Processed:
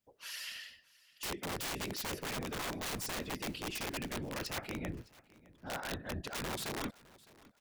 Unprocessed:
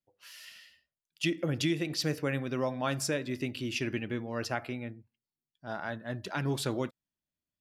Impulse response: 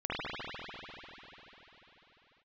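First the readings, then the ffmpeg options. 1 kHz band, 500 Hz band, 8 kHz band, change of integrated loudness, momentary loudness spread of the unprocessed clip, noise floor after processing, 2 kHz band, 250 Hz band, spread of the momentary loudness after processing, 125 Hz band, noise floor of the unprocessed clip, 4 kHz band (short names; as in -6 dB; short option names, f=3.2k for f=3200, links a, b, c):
-3.0 dB, -8.5 dB, -0.5 dB, -6.0 dB, 14 LU, -68 dBFS, -4.0 dB, -9.0 dB, 7 LU, -10.0 dB, under -85 dBFS, -2.5 dB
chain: -af "afftfilt=real='hypot(re,im)*cos(2*PI*random(0))':imag='hypot(re,im)*sin(2*PI*random(1))':win_size=512:overlap=0.75,aeval=exprs='(mod(50.1*val(0)+1,2)-1)/50.1':c=same,areverse,acompressor=threshold=-49dB:ratio=12,areverse,aecho=1:1:610|1220:0.0794|0.0262,volume=12.5dB"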